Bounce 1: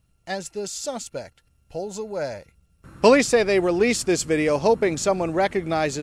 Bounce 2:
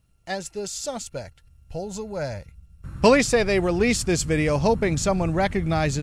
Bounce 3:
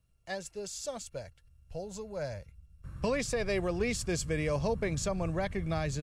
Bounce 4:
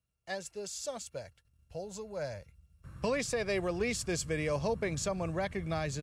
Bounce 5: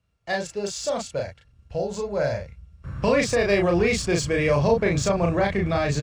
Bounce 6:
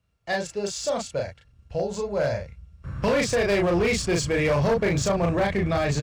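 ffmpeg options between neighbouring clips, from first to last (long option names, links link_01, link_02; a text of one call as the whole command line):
ffmpeg -i in.wav -af "asubboost=boost=7:cutoff=150" out.wav
ffmpeg -i in.wav -filter_complex "[0:a]aecho=1:1:1.8:0.3,acrossover=split=210[link_01][link_02];[link_02]alimiter=limit=-14dB:level=0:latency=1:release=155[link_03];[link_01][link_03]amix=inputs=2:normalize=0,volume=-9dB" out.wav
ffmpeg -i in.wav -af "agate=range=-8dB:threshold=-59dB:ratio=16:detection=peak,highpass=55,lowshelf=frequency=250:gain=-4" out.wav
ffmpeg -i in.wav -filter_complex "[0:a]asplit=2[link_01][link_02];[link_02]alimiter=level_in=5.5dB:limit=-24dB:level=0:latency=1,volume=-5.5dB,volume=1dB[link_03];[link_01][link_03]amix=inputs=2:normalize=0,adynamicsmooth=sensitivity=2:basefreq=5000,asplit=2[link_04][link_05];[link_05]adelay=35,volume=-2.5dB[link_06];[link_04][link_06]amix=inputs=2:normalize=0,volume=6dB" out.wav
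ffmpeg -i in.wav -af "asoftclip=type=hard:threshold=-17.5dB" out.wav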